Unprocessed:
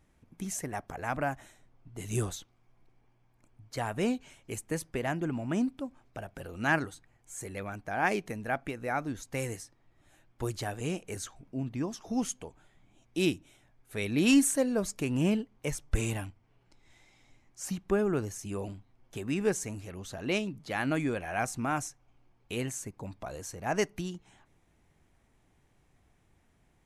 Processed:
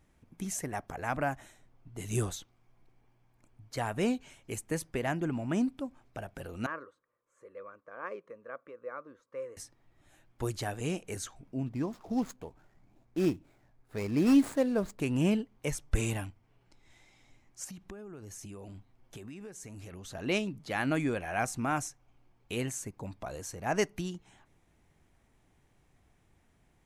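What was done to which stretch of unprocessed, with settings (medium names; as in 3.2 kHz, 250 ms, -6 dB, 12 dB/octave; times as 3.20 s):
6.66–9.57 s: two resonant band-passes 770 Hz, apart 1.1 oct
11.66–15.00 s: median filter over 15 samples
17.64–20.15 s: compression 20:1, threshold -41 dBFS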